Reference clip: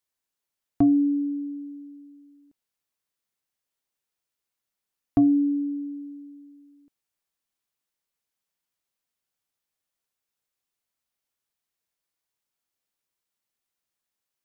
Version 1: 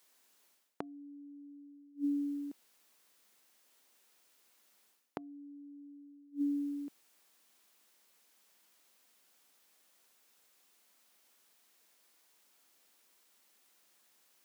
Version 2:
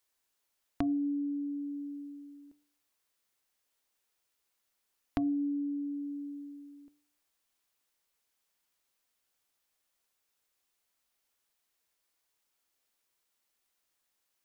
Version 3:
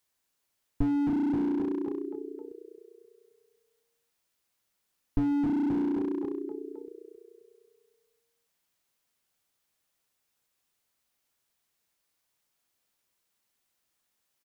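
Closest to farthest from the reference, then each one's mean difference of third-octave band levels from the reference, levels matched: 2, 1, 3; 1.5, 3.5, 11.5 decibels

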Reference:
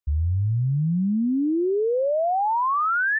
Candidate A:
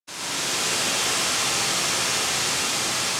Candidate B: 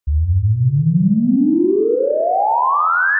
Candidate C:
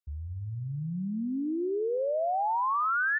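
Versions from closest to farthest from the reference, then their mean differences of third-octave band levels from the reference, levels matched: C, B, A; 1.5, 6.0, 39.5 decibels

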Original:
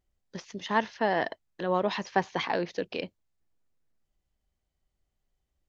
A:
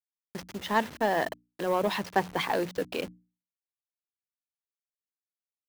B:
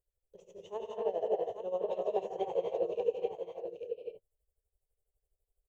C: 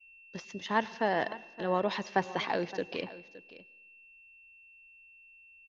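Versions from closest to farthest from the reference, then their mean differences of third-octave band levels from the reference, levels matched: C, A, B; 2.5, 7.5, 11.0 decibels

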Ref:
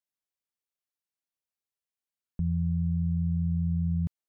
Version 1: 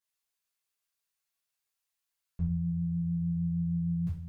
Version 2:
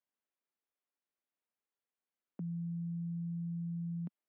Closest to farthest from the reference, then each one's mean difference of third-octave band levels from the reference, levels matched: 1, 2; 1.5, 2.5 decibels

